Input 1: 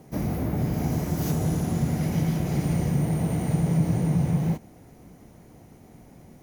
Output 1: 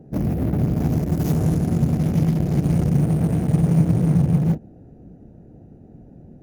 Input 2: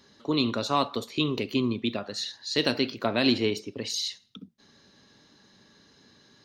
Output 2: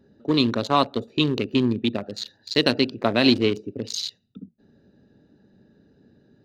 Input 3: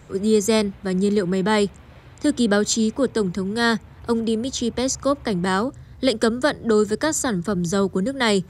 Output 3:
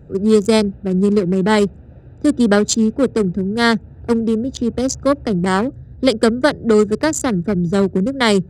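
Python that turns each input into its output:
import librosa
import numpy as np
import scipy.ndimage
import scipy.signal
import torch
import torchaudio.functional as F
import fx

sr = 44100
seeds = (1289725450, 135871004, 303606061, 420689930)

y = fx.wiener(x, sr, points=41)
y = y * 10.0 ** (6.0 / 20.0)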